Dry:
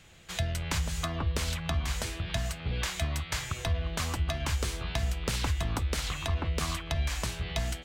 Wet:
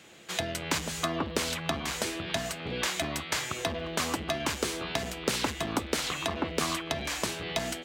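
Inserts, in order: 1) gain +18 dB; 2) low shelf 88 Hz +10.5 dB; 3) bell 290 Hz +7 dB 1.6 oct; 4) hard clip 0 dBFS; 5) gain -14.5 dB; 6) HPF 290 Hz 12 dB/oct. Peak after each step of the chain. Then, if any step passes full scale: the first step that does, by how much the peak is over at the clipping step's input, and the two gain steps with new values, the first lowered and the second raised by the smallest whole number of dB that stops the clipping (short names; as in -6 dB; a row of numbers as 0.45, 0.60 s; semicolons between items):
+2.5, +3.5, +4.5, 0.0, -14.5, -11.0 dBFS; step 1, 4.5 dB; step 1 +13 dB, step 5 -9.5 dB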